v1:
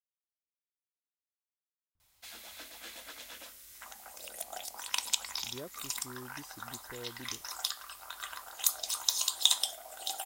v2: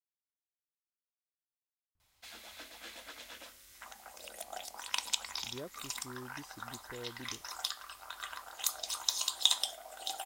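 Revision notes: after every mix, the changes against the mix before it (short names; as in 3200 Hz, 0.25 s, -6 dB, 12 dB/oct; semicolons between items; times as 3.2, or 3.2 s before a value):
master: add high shelf 7800 Hz -9 dB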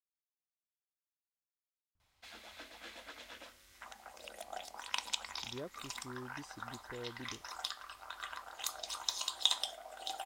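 background: add LPF 3600 Hz 6 dB/oct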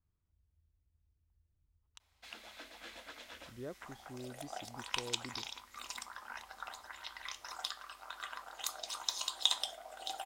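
speech: entry -1.95 s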